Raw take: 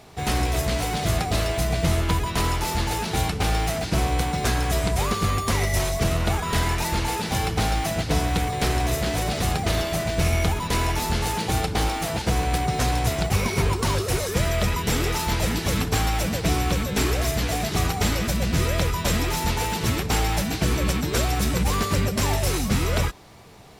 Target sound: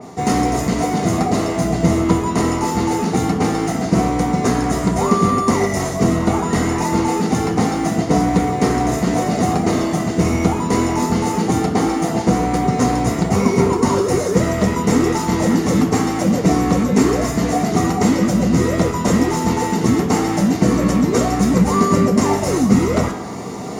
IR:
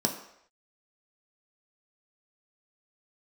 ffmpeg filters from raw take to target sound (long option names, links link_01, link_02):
-filter_complex "[0:a]areverse,acompressor=mode=upward:threshold=-24dB:ratio=2.5,areverse[link_01];[1:a]atrim=start_sample=2205,asetrate=52920,aresample=44100[link_02];[link_01][link_02]afir=irnorm=-1:irlink=0,adynamicequalizer=threshold=0.0224:dfrequency=2700:dqfactor=0.7:tfrequency=2700:tqfactor=0.7:attack=5:release=100:ratio=0.375:range=2:mode=cutabove:tftype=highshelf,volume=-2dB"